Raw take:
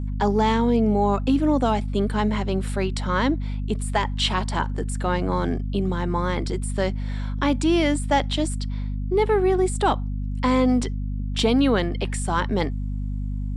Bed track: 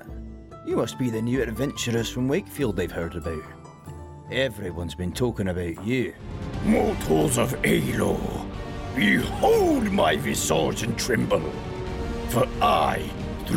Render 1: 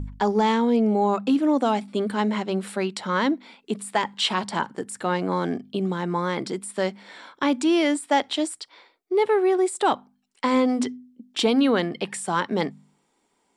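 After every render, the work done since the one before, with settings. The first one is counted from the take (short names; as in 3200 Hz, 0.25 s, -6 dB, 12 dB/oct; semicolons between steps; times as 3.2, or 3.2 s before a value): de-hum 50 Hz, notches 5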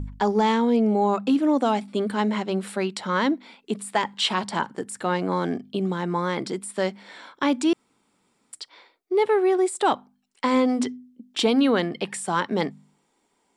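7.73–8.53 room tone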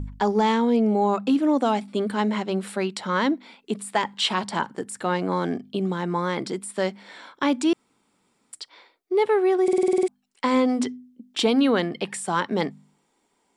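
9.63 stutter in place 0.05 s, 9 plays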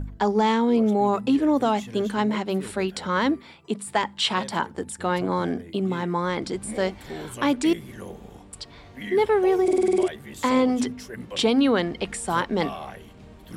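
add bed track -15 dB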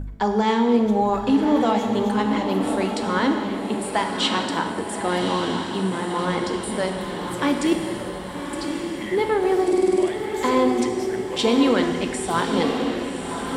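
diffused feedback echo 1.143 s, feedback 53%, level -6 dB; non-linear reverb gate 0.49 s falling, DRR 5 dB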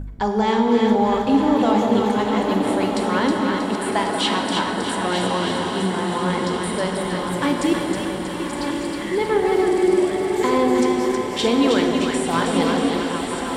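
reverse delay 0.672 s, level -8 dB; on a send: split-band echo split 900 Hz, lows 0.188 s, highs 0.318 s, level -4.5 dB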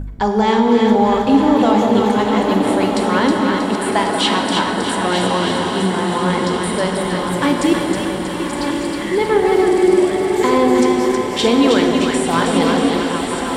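gain +4.5 dB; limiter -3 dBFS, peak gain reduction 2 dB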